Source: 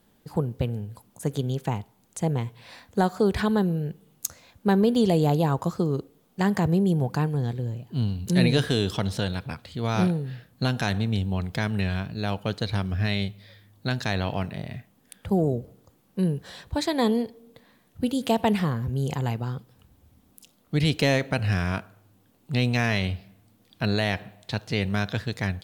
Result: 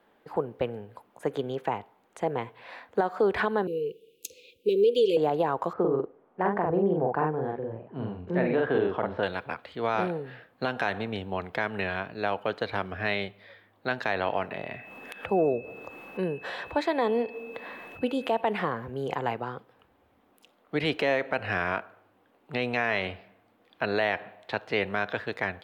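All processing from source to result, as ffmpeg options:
-filter_complex "[0:a]asettb=1/sr,asplit=3[s0][s1][s2];[s0]atrim=end=3.674[s3];[s1]atrim=start=3.67:end=5.17,asetpts=PTS-STARTPTS,afade=t=in:d=0.004:c=qsin,afade=t=out:st=1.496:d=0.004:c=qsin,lowshelf=f=360:t=q:w=1.5:g=-12,acontrast=76,asuperstop=centerf=1100:order=20:qfactor=0.55[s4];[s2]atrim=start=5.166[s5];[s3][s4]acrossfade=d=0.004:c1=hsin:c2=qsin[s6];[s6][s5]acrossfade=d=0.004:c1=qsin:c2=hsin,asettb=1/sr,asplit=3[s7][s8][s9];[s7]atrim=end=5.734[s10];[s8]atrim=start=5.73:end=9.23,asetpts=PTS-STARTPTS,afade=t=in:d=0.004:c=qsin,afade=t=out:st=3.496:d=0.004:c=qsin,lowpass=1400,asplit=2[s11][s12];[s12]adelay=45,volume=0.794[s13];[s11][s13]amix=inputs=2:normalize=0,atrim=end_sample=154350[s14];[s9]atrim=start=9.226[s15];[s10][s14]acrossfade=d=0.004:c1=hsin:c2=qsin[s16];[s16][s15]acrossfade=d=0.004:c1=qsin:c2=hsin,asettb=1/sr,asplit=3[s17][s18][s19];[s17]atrim=end=14.514[s20];[s18]atrim=start=14.51:end=18.41,asetpts=PTS-STARTPTS,afade=t=in:d=0.004:c=qsin,afade=t=out:st=3.896:d=0.004:c=qsin,acompressor=mode=upward:threshold=0.0398:ratio=2.5:attack=3.2:release=140:knee=2.83:detection=peak,aeval=exprs='val(0)+0.00447*sin(2*PI*2600*n/s)':c=same[s21];[s19]atrim=start=18.406[s22];[s20][s21]acrossfade=d=0.004:c1=hsin:c2=qsin[s23];[s23][s22]acrossfade=d=0.004:c1=qsin:c2=hsin,acrossover=split=340 2700:gain=0.0891 1 0.0631[s24][s25][s26];[s24][s25][s26]amix=inputs=3:normalize=0,alimiter=limit=0.0944:level=0:latency=1:release=146,highshelf=f=9400:g=4.5,volume=1.88"

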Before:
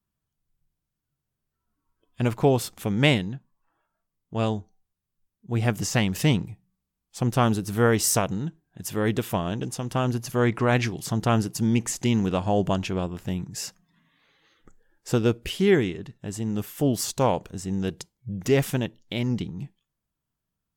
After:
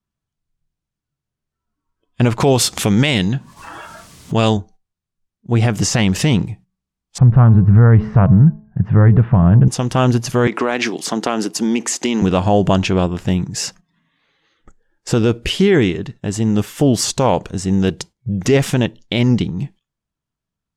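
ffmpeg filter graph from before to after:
-filter_complex "[0:a]asettb=1/sr,asplit=3[s0][s1][s2];[s0]atrim=end=2.404[s3];[s1]atrim=start=2.4:end=4.57,asetpts=PTS-STARTPTS,afade=t=in:d=0.004:c=qsin,afade=t=out:st=2.166:d=0.004:c=qsin,highpass=49,highshelf=f=2400:g=9,acompressor=mode=upward:threshold=0.0794:ratio=2.5:attack=3.2:release=140:knee=2.83:detection=peak[s4];[s2]atrim=start=4.566[s5];[s3][s4]acrossfade=d=0.004:c1=hsin:c2=qsin[s6];[s6][s5]acrossfade=d=0.004:c1=qsin:c2=hsin,asettb=1/sr,asplit=3[s7][s8][s9];[s7]atrim=end=7.184[s10];[s8]atrim=start=7.18:end=9.68,asetpts=PTS-STARTPTS,afade=t=in:d=0.004:c=qsin,afade=t=out:st=2.496:d=0.004:c=qsin,lowpass=f=1700:w=0.5412,lowpass=f=1700:w=1.3066,lowshelf=f=210:t=q:w=1.5:g=11.5,bandreject=f=214.6:t=h:w=4,bandreject=f=429.2:t=h:w=4,bandreject=f=643.8:t=h:w=4,bandreject=f=858.4:t=h:w=4,bandreject=f=1073:t=h:w=4[s11];[s9]atrim=start=9.676[s12];[s10][s11]acrossfade=d=0.004:c1=hsin:c2=qsin[s13];[s13][s12]acrossfade=d=0.004:c1=qsin:c2=hsin,asettb=1/sr,asplit=3[s14][s15][s16];[s14]atrim=end=10.474[s17];[s15]atrim=start=10.47:end=12.22,asetpts=PTS-STARTPTS,afade=t=in:d=0.004:c=qsin,afade=t=out:st=1.746:d=0.004:c=qsin,highpass=f=240:w=0.5412,highpass=f=240:w=1.3066,acompressor=threshold=0.0631:ratio=6:attack=3.2:release=140:knee=1:detection=peak[s18];[s16]atrim=start=12.216[s19];[s17][s18]acrossfade=d=0.004:c1=hsin:c2=qsin[s20];[s20][s19]acrossfade=d=0.004:c1=qsin:c2=hsin,agate=range=0.282:threshold=0.00355:ratio=16:detection=peak,lowpass=8000,alimiter=level_in=5.31:limit=0.891:release=50:level=0:latency=1,volume=0.75"

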